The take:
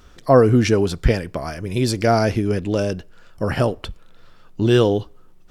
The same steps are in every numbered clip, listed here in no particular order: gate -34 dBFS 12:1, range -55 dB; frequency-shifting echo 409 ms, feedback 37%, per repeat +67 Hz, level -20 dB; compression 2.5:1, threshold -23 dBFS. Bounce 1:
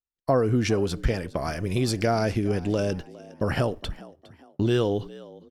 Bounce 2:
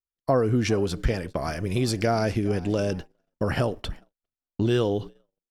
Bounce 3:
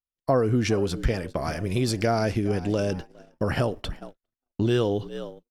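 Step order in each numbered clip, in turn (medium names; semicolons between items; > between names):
compression > gate > frequency-shifting echo; compression > frequency-shifting echo > gate; frequency-shifting echo > compression > gate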